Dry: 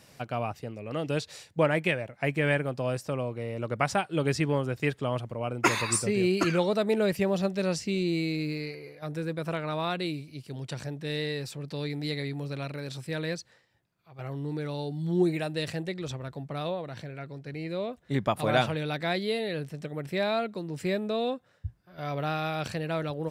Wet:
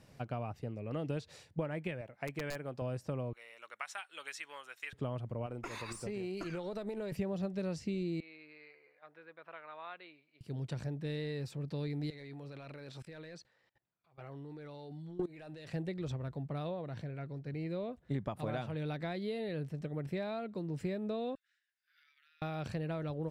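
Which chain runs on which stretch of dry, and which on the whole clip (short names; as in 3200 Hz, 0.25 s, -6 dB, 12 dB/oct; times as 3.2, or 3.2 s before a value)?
2.01–2.82 low shelf 260 Hz -10.5 dB + wrapped overs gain 16 dB
3.33–4.93 Chebyshev high-pass 1500 Hz + tilt +2 dB/oct + notch 4800 Hz, Q 6.1
5.46–7.12 tone controls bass -7 dB, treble +3 dB + compressor 12:1, threshold -29 dBFS + tube stage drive 23 dB, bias 0.4
8.2–10.41 HPF 1200 Hz + air absorption 460 m
12.1–15.73 overdrive pedal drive 14 dB, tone 5600 Hz, clips at -13.5 dBFS + level quantiser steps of 22 dB
21.35–22.42 steep high-pass 1600 Hz 48 dB/oct + compressor 12:1, threshold -56 dBFS
whole clip: compressor, threshold -30 dBFS; tilt -2 dB/oct; gain -6.5 dB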